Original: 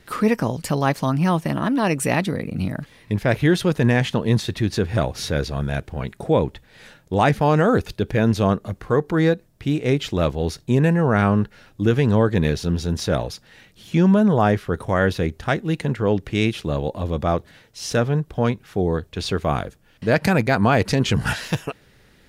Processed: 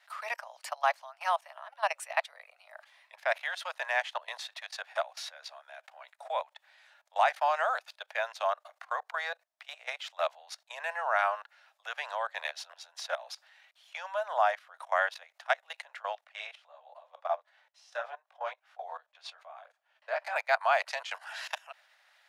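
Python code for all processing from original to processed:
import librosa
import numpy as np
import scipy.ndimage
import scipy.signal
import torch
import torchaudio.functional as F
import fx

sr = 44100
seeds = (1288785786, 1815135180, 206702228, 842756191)

y = fx.chain(x, sr, fx.tilt_eq(slope=-2.5),
    fx.detune_double(cents=15), at=(16.24, 20.36))
y = fx.high_shelf(y, sr, hz=6800.0, db=-10.5)
y = fx.level_steps(y, sr, step_db=19)
y = scipy.signal.sosfilt(scipy.signal.butter(12, 620.0, 'highpass', fs=sr, output='sos'), y)
y = F.gain(torch.from_numpy(y), -2.0).numpy()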